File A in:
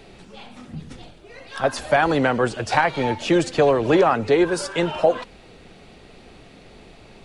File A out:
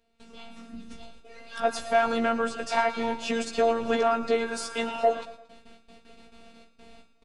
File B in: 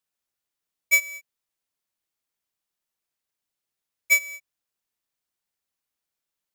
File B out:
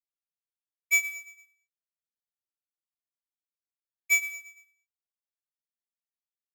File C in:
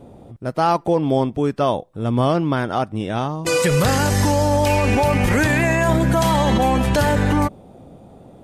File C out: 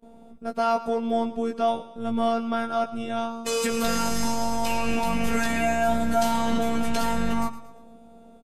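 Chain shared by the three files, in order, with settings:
noise gate with hold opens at −35 dBFS
notch filter 2,000 Hz, Q 18
soft clipping −6.5 dBFS
phases set to zero 230 Hz
double-tracking delay 16 ms −4 dB
repeating echo 114 ms, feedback 44%, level −15 dB
level −4 dB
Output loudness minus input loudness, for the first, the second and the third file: −6.5, −4.5, −7.5 LU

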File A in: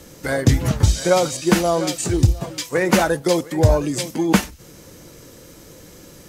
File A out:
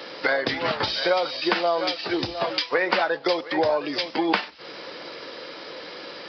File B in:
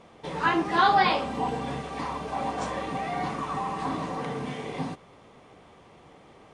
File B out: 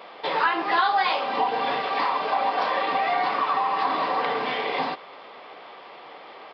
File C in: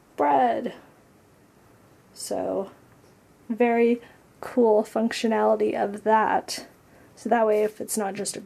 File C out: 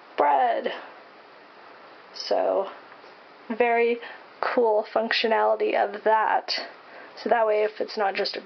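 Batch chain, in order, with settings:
high-pass filter 600 Hz 12 dB per octave
downward compressor 5 to 1, threshold −33 dBFS
downsampling to 11,025 Hz
loudness normalisation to −24 LKFS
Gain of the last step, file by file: +12.5, +13.0, +13.5 decibels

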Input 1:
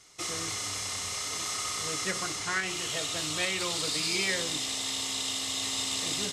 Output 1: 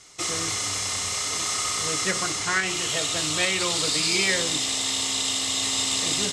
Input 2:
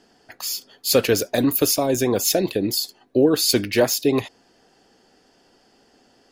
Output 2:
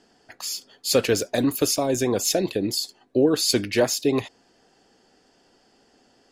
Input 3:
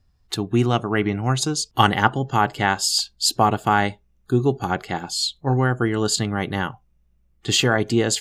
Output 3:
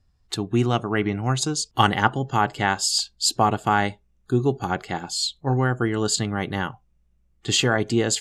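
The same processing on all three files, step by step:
low-pass filter 11,000 Hz 12 dB per octave
parametric band 7,600 Hz +3 dB 0.29 octaves
loudness normalisation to −23 LKFS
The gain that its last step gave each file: +6.5, −2.5, −2.0 decibels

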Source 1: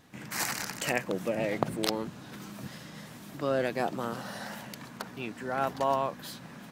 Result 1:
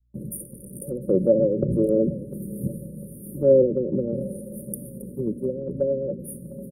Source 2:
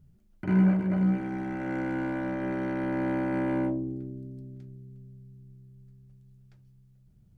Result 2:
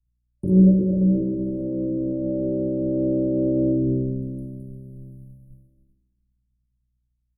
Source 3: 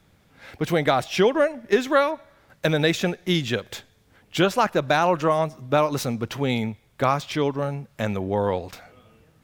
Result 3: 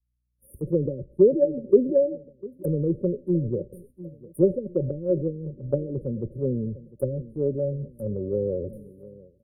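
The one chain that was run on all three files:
loose part that buzzes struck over −29 dBFS, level −20 dBFS
treble cut that deepens with the level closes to 510 Hz, closed at −19 dBFS
noise gate −50 dBFS, range −18 dB
parametric band 1,800 Hz +13 dB 1 octave
repeating echo 701 ms, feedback 44%, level −20 dB
dynamic equaliser 200 Hz, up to −6 dB, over −40 dBFS, Q 2.5
comb filter 5.3 ms, depth 32%
in parallel at −2.5 dB: compressor whose output falls as the input rises −35 dBFS, ratio −1
on the sum: mains hum 60 Hz, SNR 30 dB
soft clipping −10 dBFS
brick-wall band-stop 590–9,000 Hz
multiband upward and downward expander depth 100%
normalise the peak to −6 dBFS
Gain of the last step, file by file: +6.5, +5.5, −1.0 decibels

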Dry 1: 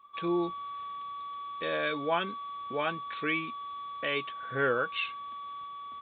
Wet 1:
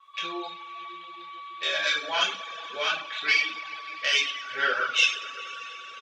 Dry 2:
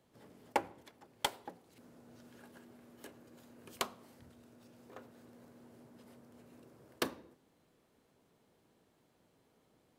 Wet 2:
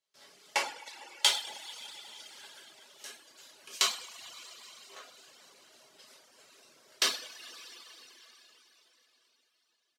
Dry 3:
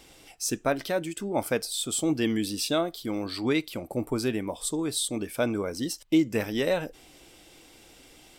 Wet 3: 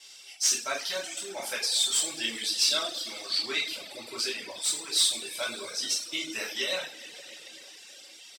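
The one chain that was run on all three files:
stylus tracing distortion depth 0.036 ms
noise gate with hold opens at −58 dBFS
resonant band-pass 4,900 Hz, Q 1.1
on a send: repeating echo 102 ms, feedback 53%, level −13 dB
on the sum: coupled-rooms reverb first 0.6 s, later 4.4 s, from −15 dB, DRR −6.5 dB
reverb reduction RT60 0.88 s
normalise the peak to −9 dBFS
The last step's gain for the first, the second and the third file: +11.0, +12.0, +4.0 decibels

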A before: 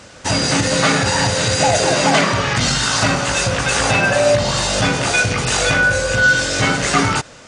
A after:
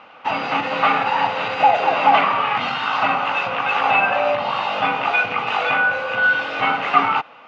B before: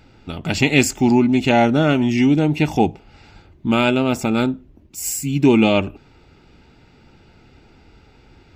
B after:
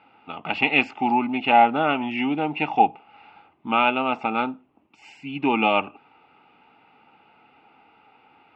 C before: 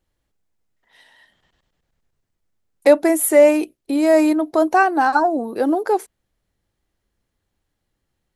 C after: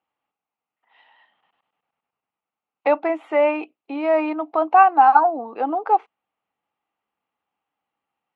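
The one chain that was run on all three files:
loudspeaker in its box 350–2,800 Hz, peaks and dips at 370 Hz −8 dB, 570 Hz −5 dB, 810 Hz +9 dB, 1,200 Hz +7 dB, 1,700 Hz −7 dB, 2,700 Hz +6 dB
level −2.5 dB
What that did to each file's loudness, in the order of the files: −3.0, −4.5, −2.0 LU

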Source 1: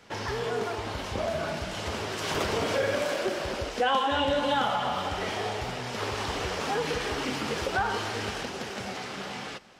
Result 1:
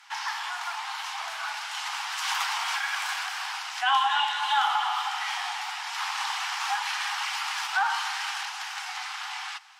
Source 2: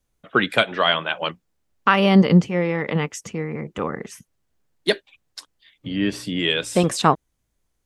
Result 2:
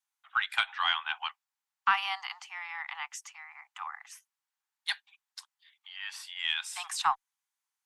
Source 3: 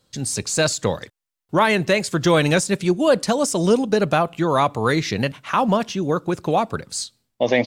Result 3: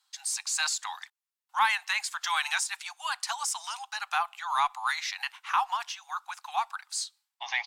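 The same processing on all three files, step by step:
Butterworth high-pass 780 Hz 96 dB per octave
harmonic generator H 2 −29 dB, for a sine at −3.5 dBFS
normalise the peak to −12 dBFS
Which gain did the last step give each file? +4.0, −8.0, −5.5 decibels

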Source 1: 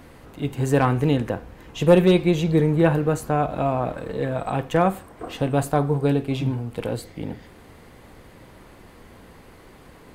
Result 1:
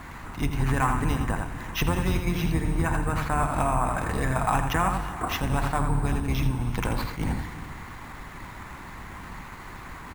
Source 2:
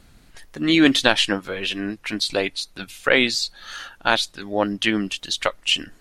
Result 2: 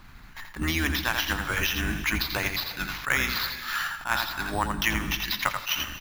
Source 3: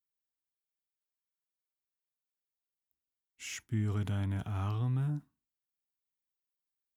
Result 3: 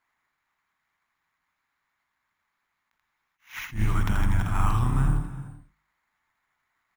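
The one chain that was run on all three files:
sub-octave generator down 2 octaves, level +2 dB
decimation without filtering 5×
parametric band 3,900 Hz +6.5 dB 0.4 octaves
hum removal 50.2 Hz, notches 4
on a send: single-tap delay 83 ms −7 dB
on the sum: harmonic and percussive parts rebalanced percussive +5 dB
downward compressor 10 to 1, threshold −21 dBFS
octave-band graphic EQ 500/1,000/2,000/4,000 Hz −11/+9/+6/−6 dB
reverb whose tail is shaped and stops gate 430 ms flat, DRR 10.5 dB
level that may rise only so fast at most 210 dB per second
loudness normalisation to −27 LKFS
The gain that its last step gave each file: +1.0, −1.5, +5.0 decibels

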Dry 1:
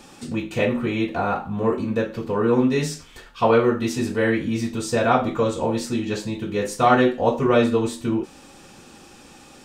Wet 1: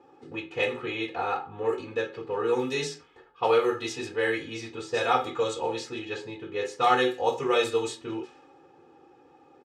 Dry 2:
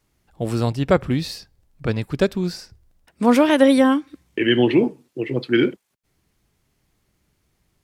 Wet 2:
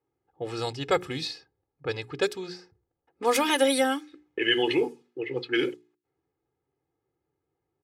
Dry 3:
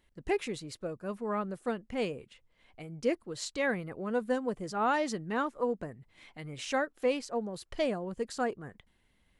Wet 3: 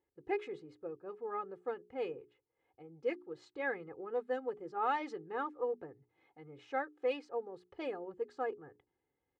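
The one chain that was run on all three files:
mains-hum notches 60/120/180/240/300/360/420 Hz
low-pass that shuts in the quiet parts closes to 780 Hz, open at −14.5 dBFS
high-pass filter 170 Hz 12 dB per octave
high-shelf EQ 3,200 Hz +12 dB
comb filter 2.4 ms, depth 85%
dynamic equaliser 320 Hz, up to −5 dB, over −32 dBFS, Q 2.9
level −8 dB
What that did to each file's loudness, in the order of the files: −6.5, −7.5, −6.0 LU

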